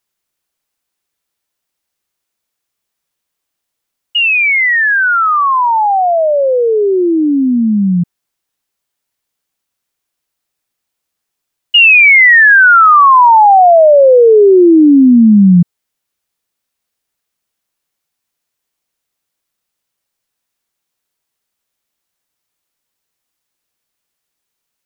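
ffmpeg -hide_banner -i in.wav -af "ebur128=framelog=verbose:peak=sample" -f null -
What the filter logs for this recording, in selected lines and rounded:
Integrated loudness:
  I:          -6.8 LUFS
  Threshold: -16.9 LUFS
Loudness range:
  LRA:        12.6 LU
  Threshold: -29.0 LUFS
  LRA low:   -17.2 LUFS
  LRA high:   -4.6 LUFS
Sample peak:
  Peak:       -1.9 dBFS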